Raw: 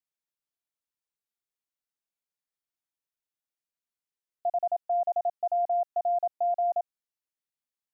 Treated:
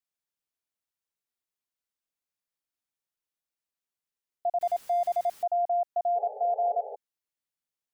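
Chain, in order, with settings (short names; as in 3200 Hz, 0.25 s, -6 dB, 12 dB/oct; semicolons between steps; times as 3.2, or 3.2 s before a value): 4.61–5.43 zero-crossing step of -43.5 dBFS; 6.15–6.96 painted sound noise 410–870 Hz -40 dBFS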